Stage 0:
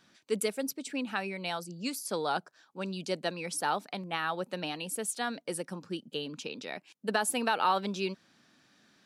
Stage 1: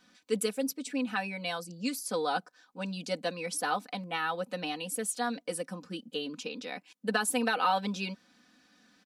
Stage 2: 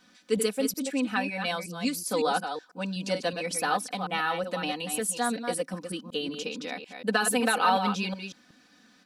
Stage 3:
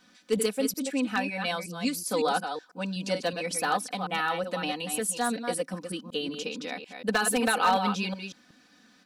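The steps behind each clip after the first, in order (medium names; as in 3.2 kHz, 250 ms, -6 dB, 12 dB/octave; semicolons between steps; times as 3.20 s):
comb 4 ms, depth 88%; trim -2 dB
chunks repeated in reverse 185 ms, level -7 dB; trim +3.5 dB
one-sided wavefolder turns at -16 dBFS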